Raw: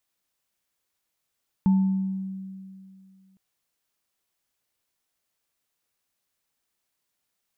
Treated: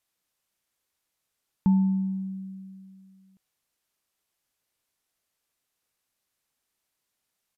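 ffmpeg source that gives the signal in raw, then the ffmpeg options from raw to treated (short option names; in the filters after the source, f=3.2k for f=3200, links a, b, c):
-f lavfi -i "aevalsrc='0.178*pow(10,-3*t/2.41)*sin(2*PI*191*t)+0.0211*pow(10,-3*t/0.81)*sin(2*PI*884*t)':d=1.71:s=44100"
-af "aresample=32000,aresample=44100"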